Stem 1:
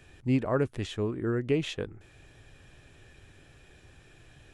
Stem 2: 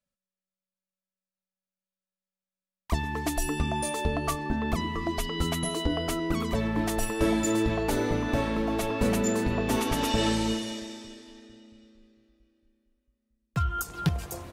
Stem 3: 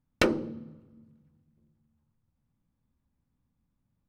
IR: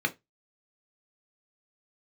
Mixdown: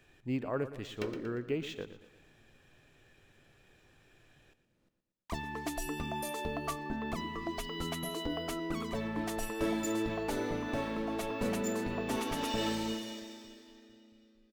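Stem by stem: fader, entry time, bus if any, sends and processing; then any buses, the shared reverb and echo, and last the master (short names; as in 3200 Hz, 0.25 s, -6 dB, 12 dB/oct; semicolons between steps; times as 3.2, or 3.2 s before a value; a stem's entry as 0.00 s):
-6.5 dB, 0.00 s, no send, echo send -13.5 dB, dry
-6.5 dB, 2.40 s, no send, no echo send, dry
-4.0 dB, 0.80 s, no send, echo send -17 dB, per-bin compression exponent 0.6; rotary speaker horn 0.6 Hz; auto duck -14 dB, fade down 1.60 s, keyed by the first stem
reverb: off
echo: feedback echo 0.117 s, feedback 46%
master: bell 60 Hz -9.5 dB 2 oct; decimation joined by straight lines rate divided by 2×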